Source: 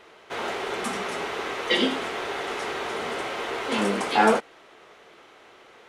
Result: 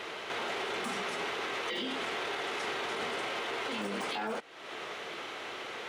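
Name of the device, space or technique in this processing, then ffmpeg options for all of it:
broadcast voice chain: -af "highpass=76,deesser=0.75,acompressor=threshold=-40dB:ratio=4,equalizer=frequency=3200:width_type=o:width=1.9:gain=4.5,alimiter=level_in=11.5dB:limit=-24dB:level=0:latency=1:release=24,volume=-11.5dB,volume=8.5dB"

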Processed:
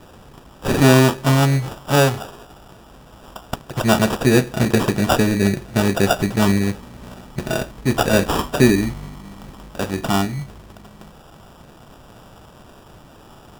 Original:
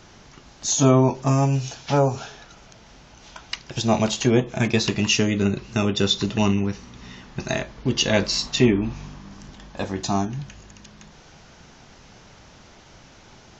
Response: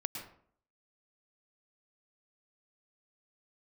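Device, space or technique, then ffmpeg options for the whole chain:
crushed at another speed: -af "asetrate=35280,aresample=44100,acrusher=samples=26:mix=1:aa=0.000001,asetrate=55125,aresample=44100,volume=4dB"

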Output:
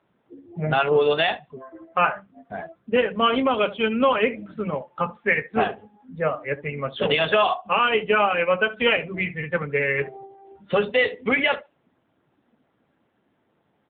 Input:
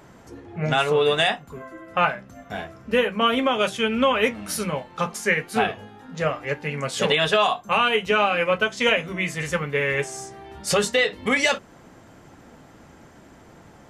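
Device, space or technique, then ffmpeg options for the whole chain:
mobile call with aggressive noise cancelling: -filter_complex "[0:a]asplit=3[link_01][link_02][link_03];[link_01]afade=type=out:start_time=2.51:duration=0.02[link_04];[link_02]highshelf=frequency=11000:gain=-3,afade=type=in:start_time=2.51:duration=0.02,afade=type=out:start_time=4.03:duration=0.02[link_05];[link_03]afade=type=in:start_time=4.03:duration=0.02[link_06];[link_04][link_05][link_06]amix=inputs=3:normalize=0,highpass=frequency=140:poles=1,aecho=1:1:72|144|216:0.178|0.0551|0.0171,afftdn=noise_reduction=19:noise_floor=-30,volume=1.5dB" -ar 8000 -c:a libopencore_amrnb -b:a 7950

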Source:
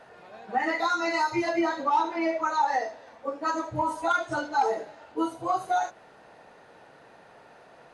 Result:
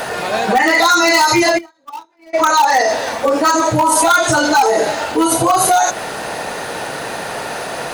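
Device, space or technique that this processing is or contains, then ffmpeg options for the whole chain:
loud club master: -filter_complex "[0:a]acompressor=threshold=-30dB:ratio=2,asoftclip=type=hard:threshold=-24dB,alimiter=level_in=33.5dB:limit=-1dB:release=50:level=0:latency=1,asplit=3[link_01][link_02][link_03];[link_01]afade=type=out:start_time=1.57:duration=0.02[link_04];[link_02]agate=range=-45dB:threshold=-2dB:ratio=16:detection=peak,afade=type=in:start_time=1.57:duration=0.02,afade=type=out:start_time=2.33:duration=0.02[link_05];[link_03]afade=type=in:start_time=2.33:duration=0.02[link_06];[link_04][link_05][link_06]amix=inputs=3:normalize=0,asettb=1/sr,asplit=3[link_07][link_08][link_09];[link_07]atrim=end=3.604[link_10];[link_08]atrim=start=3.6:end=4.04,asetpts=PTS-STARTPTS,afade=type=in:duration=0.004:curve=qsin,afade=type=out:start_time=0.436:duration=0.004:curve=qsin,highpass=130[link_11];[link_09]atrim=start=4.036[link_12];[link_10][link_11]acrossfade=duration=0.004:curve1=hsin:curve2=qsin[link_13];[link_13][link_12]acrossfade=duration=0.004:curve1=qsin:curve2=hsin,aemphasis=mode=production:type=75fm,volume=-5.5dB"

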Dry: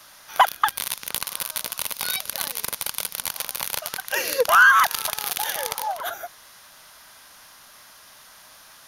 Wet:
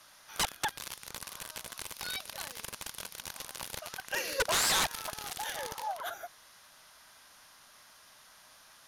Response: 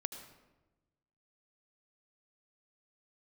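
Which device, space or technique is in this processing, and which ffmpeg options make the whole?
overflowing digital effects unit: -af "aeval=exprs='(mod(4.73*val(0)+1,2)-1)/4.73':channel_layout=same,lowpass=12000,volume=-8.5dB"

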